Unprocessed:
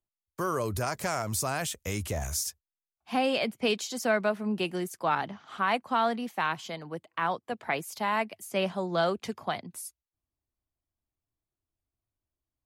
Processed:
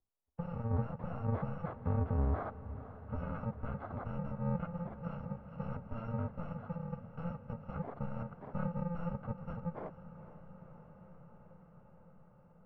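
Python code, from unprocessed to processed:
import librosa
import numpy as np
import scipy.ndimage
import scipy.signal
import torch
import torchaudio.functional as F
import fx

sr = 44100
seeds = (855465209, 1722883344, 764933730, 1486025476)

p1 = fx.bit_reversed(x, sr, seeds[0], block=128)
p2 = np.clip(p1, -10.0 ** (-30.0 / 20.0), 10.0 ** (-30.0 / 20.0))
p3 = fx.rider(p2, sr, range_db=10, speed_s=2.0)
p4 = scipy.signal.sosfilt(scipy.signal.butter(4, 1100.0, 'lowpass', fs=sr, output='sos'), p3)
p5 = p4 + fx.echo_diffused(p4, sr, ms=480, feedback_pct=78, wet_db=-15.0, dry=0)
y = p5 * librosa.db_to_amplitude(6.5)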